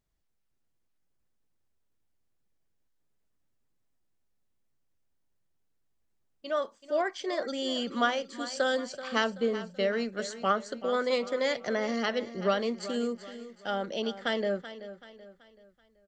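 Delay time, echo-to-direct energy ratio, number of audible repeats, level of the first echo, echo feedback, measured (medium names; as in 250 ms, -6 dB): 381 ms, -12.5 dB, 3, -13.5 dB, 41%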